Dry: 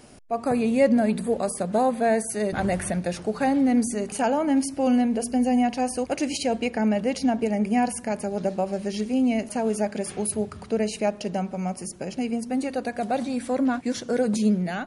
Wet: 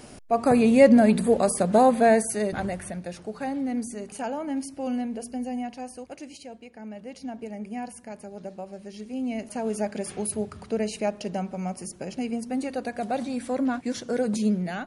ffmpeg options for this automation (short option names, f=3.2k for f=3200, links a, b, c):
-af "volume=21.5dB,afade=t=out:st=2.01:d=0.76:silence=0.251189,afade=t=out:st=5.1:d=1.57:silence=0.251189,afade=t=in:st=6.67:d=0.76:silence=0.398107,afade=t=in:st=8.98:d=0.88:silence=0.334965"